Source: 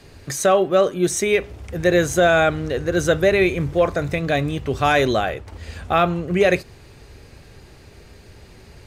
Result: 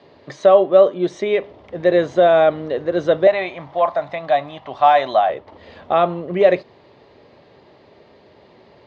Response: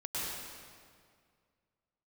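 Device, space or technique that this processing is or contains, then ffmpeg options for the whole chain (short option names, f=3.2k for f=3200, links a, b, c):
kitchen radio: -filter_complex "[0:a]highpass=220,equalizer=f=600:t=q:w=4:g=7,equalizer=f=980:t=q:w=4:g=5,equalizer=f=1.5k:t=q:w=4:g=-8,equalizer=f=2.5k:t=q:w=4:g=-8,lowpass=f=3.7k:w=0.5412,lowpass=f=3.7k:w=1.3066,asettb=1/sr,asplit=3[a][b][c];[a]atrim=end=3.274[d];[b]atrim=start=3.27:end=5.3,asetpts=PTS-STARTPTS,afade=t=in:d=0.004:c=qsin,afade=t=out:st=2.026:d=0.004:c=qsin,lowshelf=f=570:t=q:w=3:g=-8[e];[c]atrim=start=5.296[f];[d][e]acrossfade=d=0.004:c1=hsin:c2=qsin[g];[g][f]acrossfade=d=0.004:c1=qsin:c2=hsin"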